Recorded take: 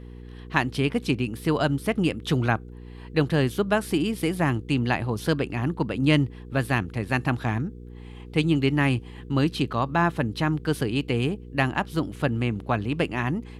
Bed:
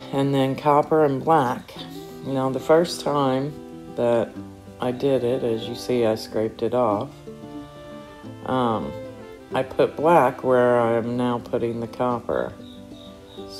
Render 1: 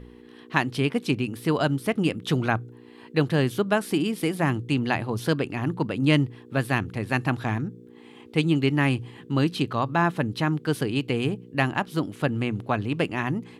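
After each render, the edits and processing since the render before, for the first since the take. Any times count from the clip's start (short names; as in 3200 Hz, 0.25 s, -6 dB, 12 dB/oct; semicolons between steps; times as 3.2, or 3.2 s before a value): de-hum 60 Hz, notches 3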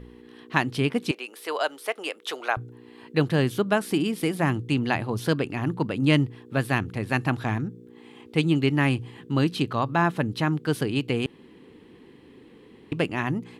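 1.11–2.57 HPF 480 Hz 24 dB/oct; 11.26–12.92 room tone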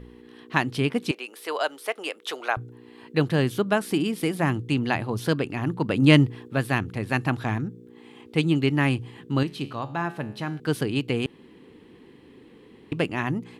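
5.89–6.48 gain +4.5 dB; 9.43–10.6 resonator 70 Hz, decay 0.65 s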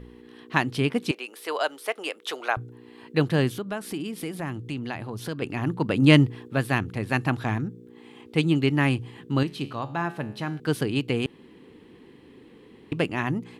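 3.5–5.42 compressor 2:1, threshold -34 dBFS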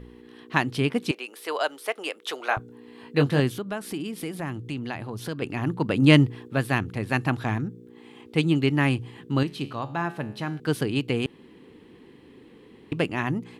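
2.46–3.4 doubler 21 ms -6 dB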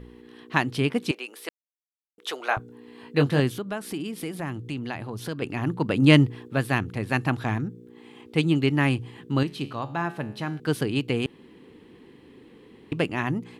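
1.49–2.18 mute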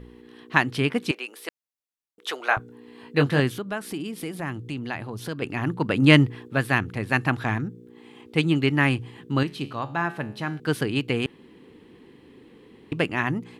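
dynamic EQ 1700 Hz, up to +5 dB, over -39 dBFS, Q 1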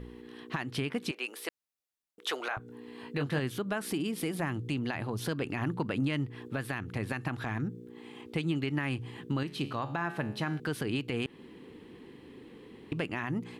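compressor 8:1, threshold -26 dBFS, peak gain reduction 16.5 dB; limiter -21.5 dBFS, peak gain reduction 10 dB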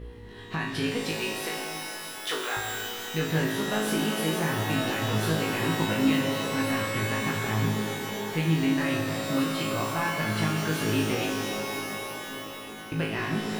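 flutter echo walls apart 3.2 m, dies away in 0.48 s; shimmer reverb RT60 3.4 s, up +12 st, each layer -2 dB, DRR 4 dB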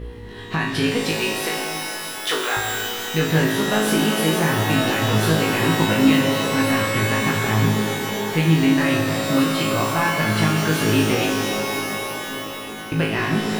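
gain +8 dB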